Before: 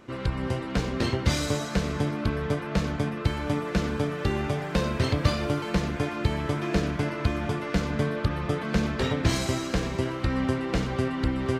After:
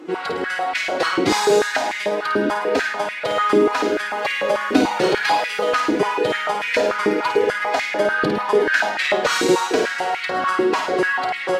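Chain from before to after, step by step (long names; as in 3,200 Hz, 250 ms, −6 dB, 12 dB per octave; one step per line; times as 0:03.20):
phase-vocoder pitch shift with formants kept +6 semitones
flutter between parallel walls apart 9.1 metres, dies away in 0.54 s
high-pass on a step sequencer 6.8 Hz 330–2,100 Hz
level +7 dB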